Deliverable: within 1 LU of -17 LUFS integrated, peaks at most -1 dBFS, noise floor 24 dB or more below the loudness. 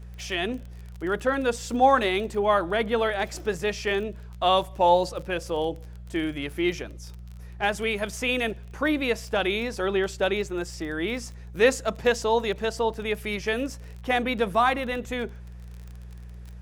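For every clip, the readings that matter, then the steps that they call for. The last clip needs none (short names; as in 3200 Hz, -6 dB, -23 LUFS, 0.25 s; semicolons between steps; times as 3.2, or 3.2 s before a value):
ticks 29/s; hum 60 Hz; harmonics up to 180 Hz; hum level -39 dBFS; loudness -26.0 LUFS; peak -7.5 dBFS; loudness target -17.0 LUFS
-> de-click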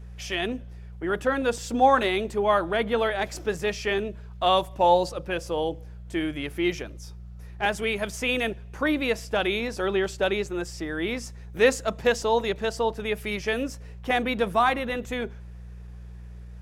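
ticks 0.060/s; hum 60 Hz; harmonics up to 180 Hz; hum level -39 dBFS
-> de-hum 60 Hz, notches 3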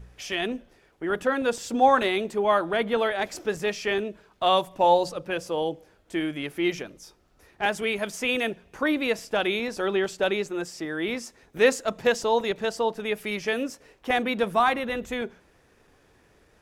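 hum none; loudness -26.0 LUFS; peak -7.5 dBFS; loudness target -17.0 LUFS
-> gain +9 dB; limiter -1 dBFS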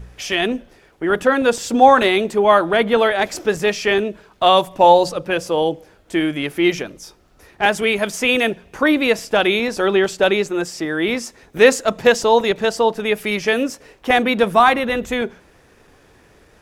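loudness -17.0 LUFS; peak -1.0 dBFS; noise floor -52 dBFS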